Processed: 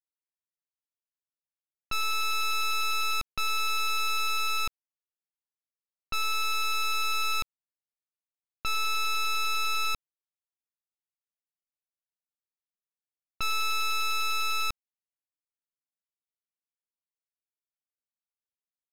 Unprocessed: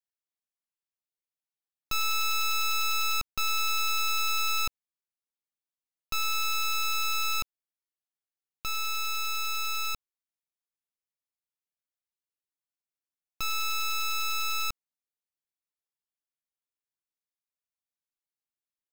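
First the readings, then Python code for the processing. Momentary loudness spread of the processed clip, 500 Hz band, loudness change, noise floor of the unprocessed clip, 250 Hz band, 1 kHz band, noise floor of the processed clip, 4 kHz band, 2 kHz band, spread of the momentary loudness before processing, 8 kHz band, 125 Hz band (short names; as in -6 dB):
6 LU, +3.0 dB, 0.0 dB, under -85 dBFS, n/a, +2.0 dB, under -85 dBFS, 0.0 dB, +1.5 dB, 8 LU, -3.0 dB, +1.0 dB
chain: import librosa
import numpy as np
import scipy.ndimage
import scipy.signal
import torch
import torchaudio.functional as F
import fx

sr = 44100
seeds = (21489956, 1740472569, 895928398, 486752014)

y = scipy.signal.sosfilt(scipy.signal.butter(4, 3300.0, 'lowpass', fs=sr, output='sos'), x)
y = fx.leveller(y, sr, passes=5)
y = fx.env_lowpass(y, sr, base_hz=2000.0, full_db=-27.5)
y = fx.rider(y, sr, range_db=10, speed_s=2.0)
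y = F.gain(torch.from_numpy(y), -1.0).numpy()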